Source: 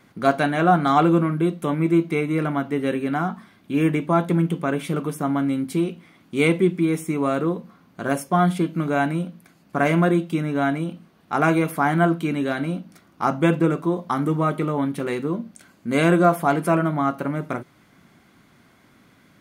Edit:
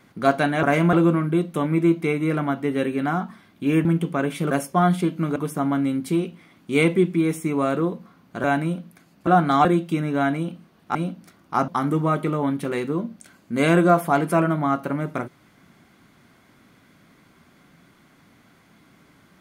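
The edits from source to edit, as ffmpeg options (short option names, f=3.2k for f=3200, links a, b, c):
-filter_complex "[0:a]asplit=11[a][b][c][d][e][f][g][h][i][j][k];[a]atrim=end=0.632[l];[b]atrim=start=9.758:end=10.062[m];[c]atrim=start=1.008:end=3.932[n];[d]atrim=start=4.338:end=5.002[o];[e]atrim=start=8.078:end=8.932[p];[f]atrim=start=4.998:end=8.082[q];[g]atrim=start=8.928:end=9.762[r];[h]atrim=start=0.628:end=1.012[s];[i]atrim=start=10.058:end=11.362[t];[j]atrim=start=12.628:end=13.362[u];[k]atrim=start=14.028[v];[l][m]acrossfade=d=0.004:c1=hsin:c2=hsin[w];[w][n]acrossfade=d=0.004:c1=hsin:c2=hsin[x];[x][o]acrossfade=d=0.004:c1=hsin:c2=hsin[y];[y][p]acrossfade=d=0.004:c1=hsin:c2=hsin[z];[z][q]acrossfade=d=0.004:c1=hsin:c2=hsin[aa];[aa][r]acrossfade=d=0.004:c1=hsin:c2=hsin[ab];[ab][s]acrossfade=d=0.004:c1=hsin:c2=hsin[ac];[ac][t]acrossfade=d=0.004:c1=hsin:c2=hsin[ad];[ad][u]acrossfade=d=0.004:c1=hsin:c2=hsin[ae];[ae][v]acrossfade=d=0.004:c1=hsin:c2=hsin"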